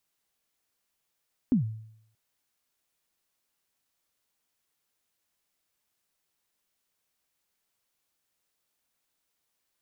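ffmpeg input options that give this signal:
-f lavfi -i "aevalsrc='0.141*pow(10,-3*t/0.7)*sin(2*PI*(280*0.117/log(110/280)*(exp(log(110/280)*min(t,0.117)/0.117)-1)+110*max(t-0.117,0)))':d=0.63:s=44100"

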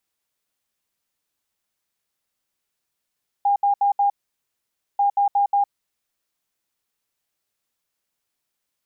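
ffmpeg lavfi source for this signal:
-f lavfi -i "aevalsrc='0.178*sin(2*PI*807*t)*clip(min(mod(mod(t,1.54),0.18),0.11-mod(mod(t,1.54),0.18))/0.005,0,1)*lt(mod(t,1.54),0.72)':d=3.08:s=44100"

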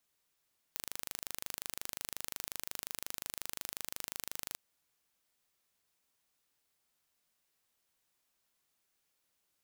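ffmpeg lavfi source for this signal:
-f lavfi -i "aevalsrc='0.266*eq(mod(n,1723),0)':d=3.81:s=44100"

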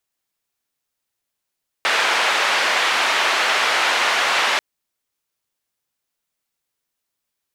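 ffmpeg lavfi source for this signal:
-f lavfi -i "anoisesrc=c=white:d=2.74:r=44100:seed=1,highpass=f=670,lowpass=f=2500,volume=-3.3dB"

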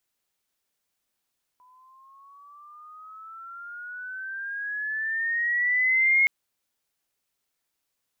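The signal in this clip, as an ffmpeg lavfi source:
-f lavfi -i "aevalsrc='pow(10,(-16+37.5*(t/4.67-1))/20)*sin(2*PI*994*4.67/(13.5*log(2)/12)*(exp(13.5*log(2)/12*t/4.67)-1))':d=4.67:s=44100"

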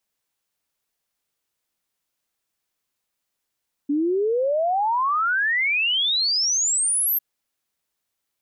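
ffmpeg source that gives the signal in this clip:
-f lavfi -i "aevalsrc='0.119*clip(min(t,3.3-t)/0.01,0,1)*sin(2*PI*280*3.3/log(13000/280)*(exp(log(13000/280)*t/3.3)-1))':d=3.3:s=44100"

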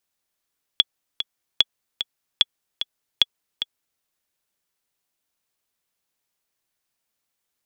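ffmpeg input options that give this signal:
-f lavfi -i "aevalsrc='pow(10,(-1-10*gte(mod(t,2*60/149),60/149))/20)*sin(2*PI*3380*mod(t,60/149))*exp(-6.91*mod(t,60/149)/0.03)':d=3.22:s=44100"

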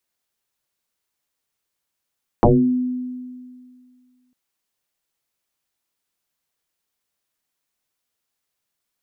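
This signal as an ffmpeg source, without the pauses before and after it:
-f lavfi -i "aevalsrc='0.398*pow(10,-3*t/2.1)*sin(2*PI*251*t+7.1*pow(10,-3*t/0.41)*sin(2*PI*0.46*251*t))':d=1.9:s=44100"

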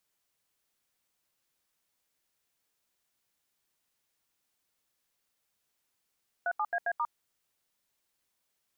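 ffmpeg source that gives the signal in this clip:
-f lavfi -i "aevalsrc='0.0316*clip(min(mod(t,0.134),0.055-mod(t,0.134))/0.002,0,1)*(eq(floor(t/0.134),0)*(sin(2*PI*697*mod(t,0.134))+sin(2*PI*1477*mod(t,0.134)))+eq(floor(t/0.134),1)*(sin(2*PI*852*mod(t,0.134))+sin(2*PI*1209*mod(t,0.134)))+eq(floor(t/0.134),2)*(sin(2*PI*697*mod(t,0.134))+sin(2*PI*1633*mod(t,0.134)))+eq(floor(t/0.134),3)*(sin(2*PI*697*mod(t,0.134))+sin(2*PI*1633*mod(t,0.134)))+eq(floor(t/0.134),4)*(sin(2*PI*941*mod(t,0.134))+sin(2*PI*1209*mod(t,0.134))))':d=0.67:s=44100"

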